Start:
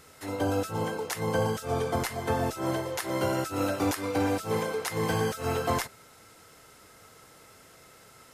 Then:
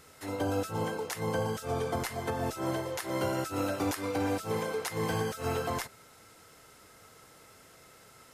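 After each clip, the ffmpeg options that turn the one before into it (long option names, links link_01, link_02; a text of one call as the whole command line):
ffmpeg -i in.wav -af "alimiter=limit=-19dB:level=0:latency=1:release=220,volume=-2dB" out.wav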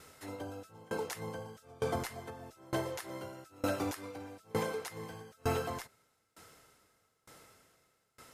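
ffmpeg -i in.wav -af "aeval=exprs='val(0)*pow(10,-27*if(lt(mod(1.1*n/s,1),2*abs(1.1)/1000),1-mod(1.1*n/s,1)/(2*abs(1.1)/1000),(mod(1.1*n/s,1)-2*abs(1.1)/1000)/(1-2*abs(1.1)/1000))/20)':channel_layout=same,volume=1.5dB" out.wav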